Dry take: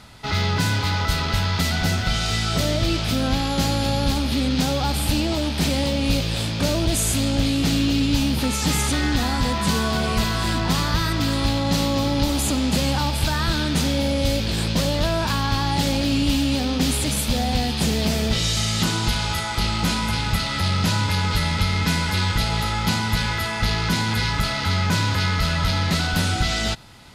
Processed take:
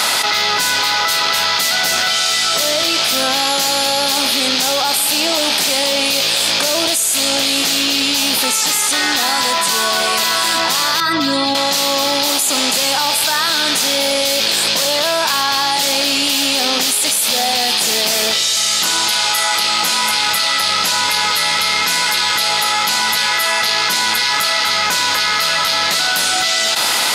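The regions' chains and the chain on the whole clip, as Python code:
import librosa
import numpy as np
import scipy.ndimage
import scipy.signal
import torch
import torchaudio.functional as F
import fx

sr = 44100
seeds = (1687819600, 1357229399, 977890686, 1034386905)

y = fx.chain(x, sr, fx.spec_expand(power=1.7),
    fx.highpass(hz=120.0, slope=24), at=(11.0, 11.55))
y = scipy.signal.sosfilt(scipy.signal.butter(2, 580.0, 'highpass', fs=sr, output='sos'), y)
y = fx.high_shelf(y, sr, hz=4600.0, db=8.5)
y = fx.env_flatten(y, sr, amount_pct=100)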